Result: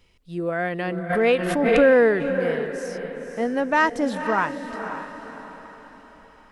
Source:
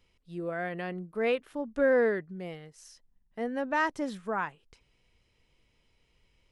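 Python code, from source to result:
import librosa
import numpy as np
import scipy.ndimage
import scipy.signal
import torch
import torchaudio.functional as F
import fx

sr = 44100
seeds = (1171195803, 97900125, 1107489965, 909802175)

y = fx.echo_diffused(x, sr, ms=519, feedback_pct=45, wet_db=-8.5)
y = fx.pre_swell(y, sr, db_per_s=30.0, at=(1.09, 2.31), fade=0.02)
y = y * 10.0 ** (8.5 / 20.0)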